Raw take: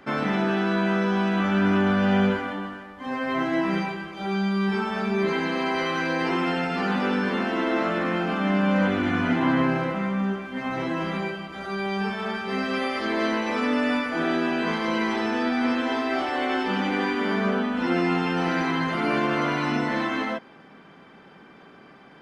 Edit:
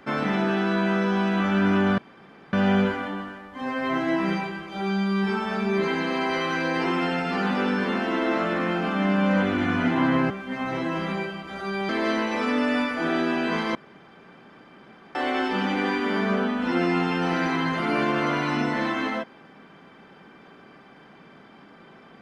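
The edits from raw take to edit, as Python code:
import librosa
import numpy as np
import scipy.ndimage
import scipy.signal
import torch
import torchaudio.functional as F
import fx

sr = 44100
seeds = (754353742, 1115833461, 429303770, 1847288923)

y = fx.edit(x, sr, fx.insert_room_tone(at_s=1.98, length_s=0.55),
    fx.cut(start_s=9.75, length_s=0.6),
    fx.cut(start_s=11.94, length_s=1.1),
    fx.room_tone_fill(start_s=14.9, length_s=1.4), tone=tone)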